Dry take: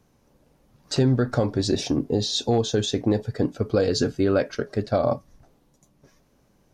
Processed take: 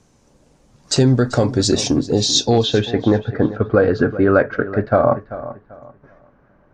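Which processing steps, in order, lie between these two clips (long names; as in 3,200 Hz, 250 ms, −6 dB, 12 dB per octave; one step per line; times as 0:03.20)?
low-pass filter sweep 7,700 Hz → 1,500 Hz, 0:02.29–0:03.01
feedback echo with a low-pass in the loop 389 ms, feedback 28%, low-pass 4,400 Hz, level −14.5 dB
level +6 dB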